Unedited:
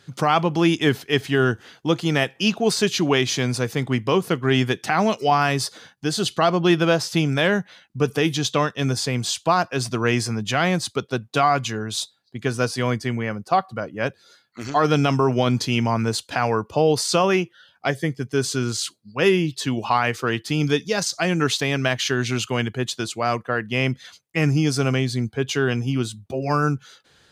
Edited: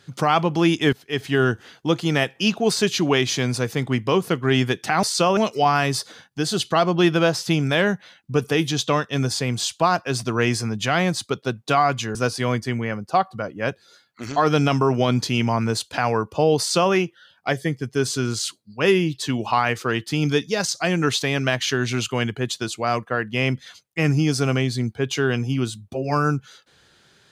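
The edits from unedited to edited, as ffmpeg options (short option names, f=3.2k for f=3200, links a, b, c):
-filter_complex "[0:a]asplit=5[a][b][c][d][e];[a]atrim=end=0.93,asetpts=PTS-STARTPTS,afade=t=out:st=0.926:d=0.004:c=hsin:silence=0.11885[f];[b]atrim=start=0.93:end=5.032,asetpts=PTS-STARTPTS,afade=t=in:d=0.42:silence=0.11885[g];[c]atrim=start=16.968:end=17.312[h];[d]atrim=start=5.028:end=11.812[i];[e]atrim=start=12.528[j];[f][g]concat=n=2:v=0:a=1[k];[k][h]acrossfade=d=0.004:c1=hsin:c2=hsin[l];[l][i]acrossfade=d=0.004:c1=hsin:c2=hsin[m];[m][j]acrossfade=d=0.004:c1=hsin:c2=hsin"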